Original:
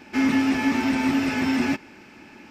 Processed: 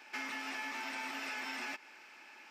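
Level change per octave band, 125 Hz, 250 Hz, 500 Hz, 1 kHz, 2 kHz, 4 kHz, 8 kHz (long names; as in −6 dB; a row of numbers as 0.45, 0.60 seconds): below −35 dB, −30.0 dB, −19.5 dB, −12.5 dB, −10.5 dB, −10.5 dB, −10.5 dB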